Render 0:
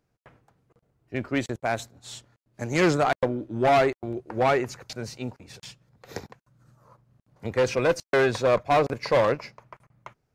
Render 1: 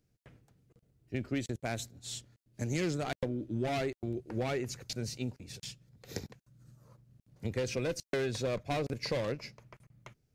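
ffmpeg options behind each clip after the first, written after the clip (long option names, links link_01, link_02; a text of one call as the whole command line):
ffmpeg -i in.wav -af "equalizer=frequency=1000:width_type=o:width=2:gain=-14.5,acompressor=threshold=-32dB:ratio=4,volume=1.5dB" out.wav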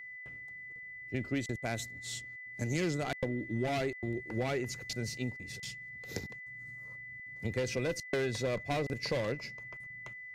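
ffmpeg -i in.wav -af "aeval=exprs='val(0)+0.00631*sin(2*PI*2000*n/s)':channel_layout=same" out.wav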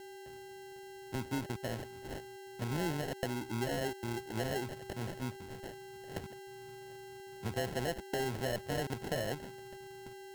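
ffmpeg -i in.wav -filter_complex "[0:a]acrossover=split=280|1600|4200[link_01][link_02][link_03][link_04];[link_03]alimiter=level_in=14dB:limit=-24dB:level=0:latency=1,volume=-14dB[link_05];[link_01][link_02][link_05][link_04]amix=inputs=4:normalize=0,acrusher=samples=37:mix=1:aa=0.000001,volume=-2.5dB" out.wav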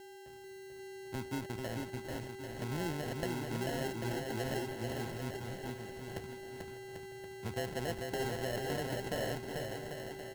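ffmpeg -i in.wav -af "aecho=1:1:440|792|1074|1299|1479:0.631|0.398|0.251|0.158|0.1,volume=-2.5dB" out.wav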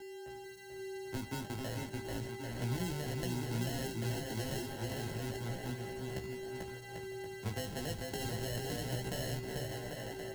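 ffmpeg -i in.wav -filter_complex "[0:a]anlmdn=0.0000398,flanger=delay=15.5:depth=4.3:speed=0.32,acrossover=split=230|3000[link_01][link_02][link_03];[link_02]acompressor=threshold=-47dB:ratio=6[link_04];[link_01][link_04][link_03]amix=inputs=3:normalize=0,volume=6dB" out.wav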